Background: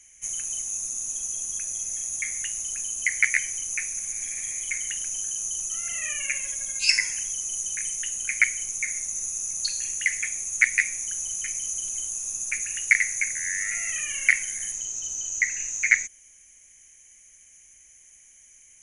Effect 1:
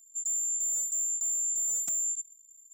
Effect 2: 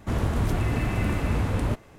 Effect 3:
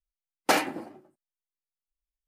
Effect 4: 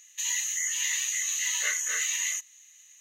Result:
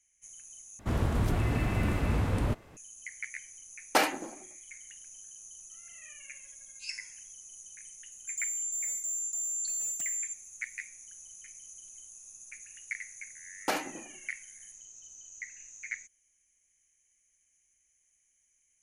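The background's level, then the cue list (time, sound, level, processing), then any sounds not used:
background -19 dB
0.79 s: replace with 2 -3.5 dB
3.46 s: add 3 -1.5 dB + bass shelf 160 Hz -12 dB
8.12 s: add 1 -4 dB
13.19 s: add 3 -8 dB
not used: 4

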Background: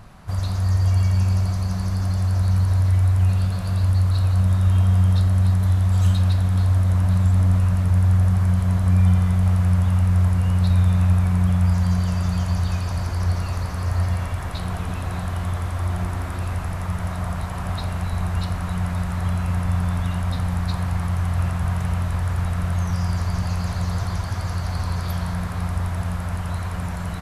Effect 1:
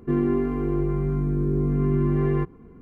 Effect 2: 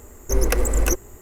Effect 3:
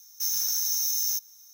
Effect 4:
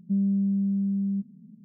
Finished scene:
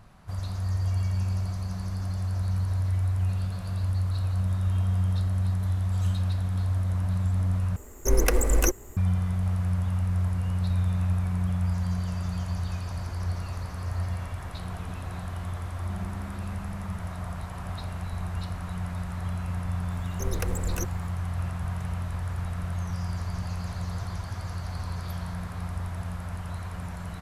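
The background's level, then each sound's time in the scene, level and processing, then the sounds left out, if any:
background -8.5 dB
7.76 s: replace with 2 -2 dB
15.76 s: add 4 -13.5 dB + compression, threshold -26 dBFS
19.90 s: add 2 -11.5 dB
not used: 1, 3

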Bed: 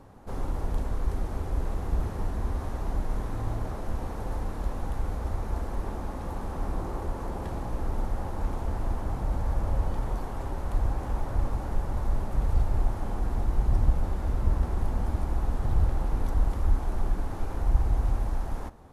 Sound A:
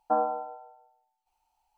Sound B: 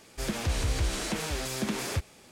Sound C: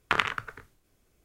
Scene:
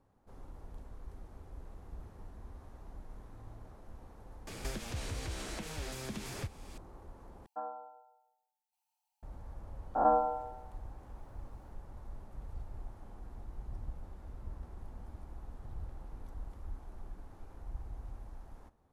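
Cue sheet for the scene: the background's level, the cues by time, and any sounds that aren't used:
bed -19.5 dB
4.47 s: add B -11 dB + three bands compressed up and down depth 100%
7.46 s: replace with A -14 dB + tilt EQ +3.5 dB/octave
9.95 s: add A -1.5 dB + reverse spectral sustain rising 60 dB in 0.88 s
not used: C

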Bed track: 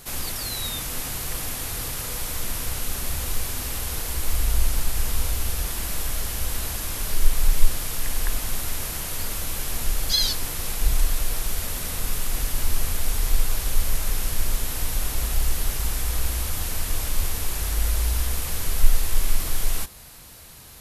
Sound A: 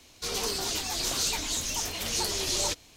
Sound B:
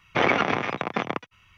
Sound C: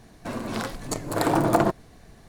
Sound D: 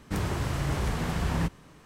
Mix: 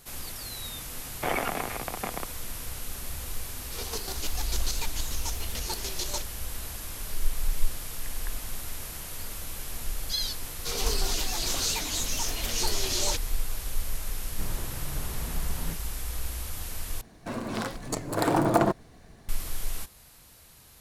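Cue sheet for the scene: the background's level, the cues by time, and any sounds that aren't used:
bed track -8.5 dB
1.07 s: add B -9.5 dB + peaking EQ 730 Hz +5 dB 0.64 oct
3.49 s: add A -3 dB + square tremolo 6.8 Hz, depth 60%, duty 30%
10.43 s: add A -0.5 dB
14.27 s: add D -10.5 dB
17.01 s: replace with C -2 dB

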